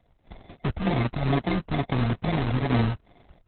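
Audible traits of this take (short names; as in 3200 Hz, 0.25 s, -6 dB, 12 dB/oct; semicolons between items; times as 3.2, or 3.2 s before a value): a buzz of ramps at a fixed pitch in blocks of 64 samples; phasing stages 6, 2.3 Hz, lowest notch 520–1500 Hz; aliases and images of a low sample rate 1400 Hz, jitter 0%; Opus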